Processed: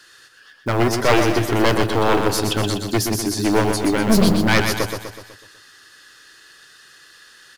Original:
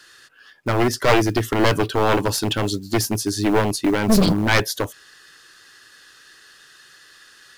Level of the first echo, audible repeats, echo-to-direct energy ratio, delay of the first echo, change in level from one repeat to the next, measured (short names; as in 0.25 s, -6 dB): -6.0 dB, 6, -4.5 dB, 0.124 s, -5.5 dB